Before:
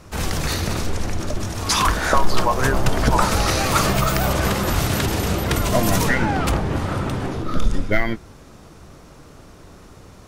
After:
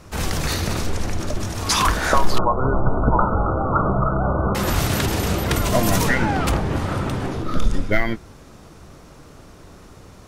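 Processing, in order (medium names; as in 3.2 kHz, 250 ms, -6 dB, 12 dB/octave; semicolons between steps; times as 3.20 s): 2.38–4.55 s: brick-wall FIR low-pass 1.5 kHz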